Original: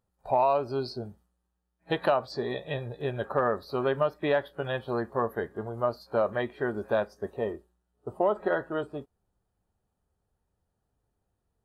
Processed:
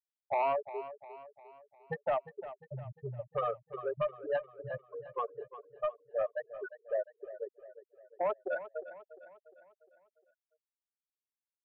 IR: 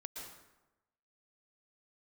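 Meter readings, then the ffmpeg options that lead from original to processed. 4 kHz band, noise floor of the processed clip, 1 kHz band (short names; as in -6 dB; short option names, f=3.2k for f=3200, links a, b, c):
under -15 dB, under -85 dBFS, -7.0 dB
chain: -filter_complex "[0:a]acrossover=split=2900[a][b];[b]acompressor=threshold=-55dB:ratio=4:attack=1:release=60[c];[a][c]amix=inputs=2:normalize=0,equalizer=f=320:w=1.2:g=-10,afftfilt=real='re*gte(hypot(re,im),0.141)':imag='im*gte(hypot(re,im),0.141)':win_size=1024:overlap=0.75,aeval=exprs='0.158*sin(PI/2*1.58*val(0)/0.158)':c=same,asplit=2[d][e];[e]aecho=0:1:352|704|1056|1408|1760:0.2|0.0978|0.0479|0.0235|0.0115[f];[d][f]amix=inputs=2:normalize=0,volume=-9dB"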